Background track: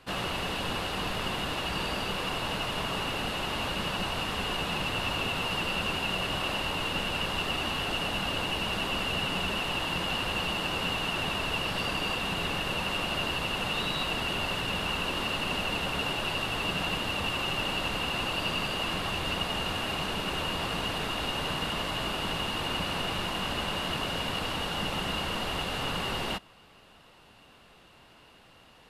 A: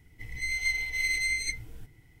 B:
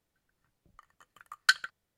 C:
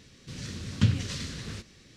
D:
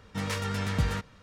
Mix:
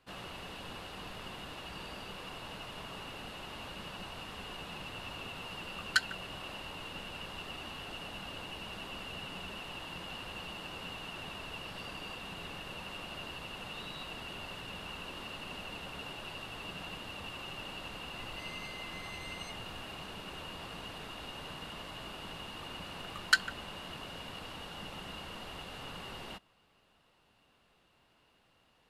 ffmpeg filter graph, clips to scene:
ffmpeg -i bed.wav -i cue0.wav -i cue1.wav -filter_complex "[2:a]asplit=2[link_01][link_02];[0:a]volume=-13dB[link_03];[1:a]acompressor=threshold=-43dB:ratio=6:attack=3.2:release=140:knee=1:detection=peak[link_04];[link_01]atrim=end=1.97,asetpts=PTS-STARTPTS,volume=-5dB,afade=type=in:duration=0.004:curve=hsin,afade=type=out:start_time=1.966:duration=0.004:curve=hsin,adelay=4470[link_05];[link_04]atrim=end=2.2,asetpts=PTS-STARTPTS,volume=-5.5dB,afade=type=in:duration=0.004:curve=hsin,afade=type=out:start_time=2.196:duration=0.004:curve=hsin,adelay=18000[link_06];[link_02]atrim=end=1.97,asetpts=PTS-STARTPTS,volume=-2dB,afade=type=in:duration=0.004:curve=hsin,afade=type=out:start_time=1.966:duration=0.004:curve=hsin,adelay=21840[link_07];[link_03][link_05][link_06][link_07]amix=inputs=4:normalize=0" out.wav

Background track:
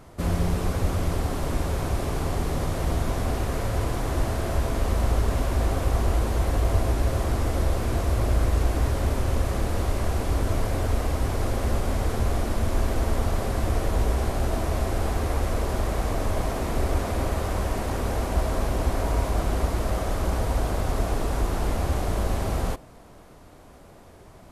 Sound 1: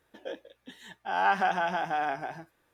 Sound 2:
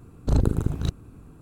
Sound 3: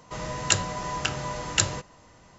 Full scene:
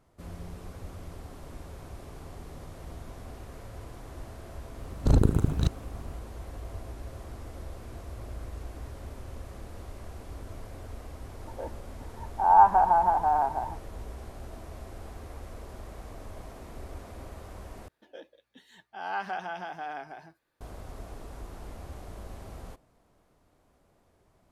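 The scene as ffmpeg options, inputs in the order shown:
ffmpeg -i bed.wav -i cue0.wav -i cue1.wav -filter_complex "[1:a]asplit=2[link_01][link_02];[0:a]volume=-17.5dB[link_03];[link_01]lowpass=frequency=930:width_type=q:width=8.5[link_04];[link_02]equalizer=frequency=4400:width=7.7:gain=8.5[link_05];[link_03]asplit=2[link_06][link_07];[link_06]atrim=end=17.884[link_08];[link_05]atrim=end=2.73,asetpts=PTS-STARTPTS,volume=-8dB[link_09];[link_07]atrim=start=20.606[link_10];[2:a]atrim=end=1.41,asetpts=PTS-STARTPTS,afade=type=in:duration=0.004:curve=hsin,afade=type=out:start_time=1.406:duration=0.004:curve=hsin,adelay=4780[link_11];[link_04]atrim=end=2.73,asetpts=PTS-STARTPTS,volume=-4dB,afade=type=in:duration=0.004:curve=hsin,afade=type=out:start_time=2.726:duration=0.004:curve=hsin,adelay=11330[link_12];[link_08][link_09]acrossfade=duration=0.004:curve1=hsin:curve2=hsin[link_13];[link_13][link_10]acrossfade=duration=0.004:curve1=hsin:curve2=hsin[link_14];[link_14][link_11][link_12]amix=inputs=3:normalize=0" out.wav

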